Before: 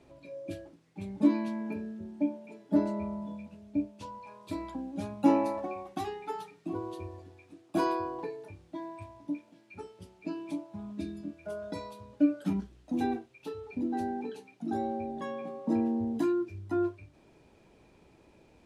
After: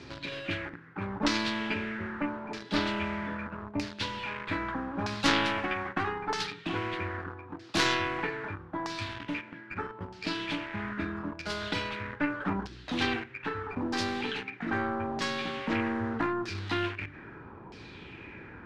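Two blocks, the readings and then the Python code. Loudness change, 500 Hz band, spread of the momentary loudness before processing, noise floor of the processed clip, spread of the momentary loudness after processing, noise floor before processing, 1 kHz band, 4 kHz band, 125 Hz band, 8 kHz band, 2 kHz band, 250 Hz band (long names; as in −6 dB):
+1.0 dB, −0.5 dB, 17 LU, −49 dBFS, 11 LU, −62 dBFS, +4.0 dB, +19.0 dB, +5.0 dB, can't be measured, +17.0 dB, −3.0 dB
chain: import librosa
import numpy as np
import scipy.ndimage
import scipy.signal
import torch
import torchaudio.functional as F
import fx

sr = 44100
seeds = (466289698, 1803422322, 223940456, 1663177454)

p1 = fx.tracing_dist(x, sr, depth_ms=0.29)
p2 = fx.low_shelf(p1, sr, hz=63.0, db=-9.0)
p3 = fx.quant_dither(p2, sr, seeds[0], bits=8, dither='none')
p4 = p2 + (p3 * librosa.db_to_amplitude(-7.5))
p5 = fx.graphic_eq_15(p4, sr, hz=(100, 630, 1600), db=(6, -11, 7))
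p6 = fx.filter_lfo_lowpass(p5, sr, shape='saw_down', hz=0.79, low_hz=870.0, high_hz=5200.0, q=2.8)
p7 = fx.spectral_comp(p6, sr, ratio=2.0)
y = p7 * librosa.db_to_amplitude(-1.5)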